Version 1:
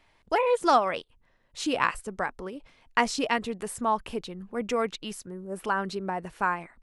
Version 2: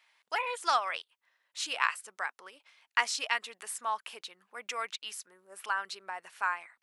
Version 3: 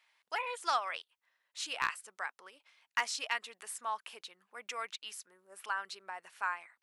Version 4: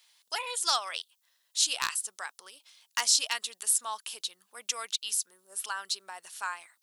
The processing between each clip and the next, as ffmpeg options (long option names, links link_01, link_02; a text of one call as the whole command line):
ffmpeg -i in.wav -af "highpass=1300" out.wav
ffmpeg -i in.wav -af "volume=16dB,asoftclip=hard,volume=-16dB,volume=-4dB" out.wav
ffmpeg -i in.wav -af "aexciter=amount=4.5:drive=6.9:freq=3200" out.wav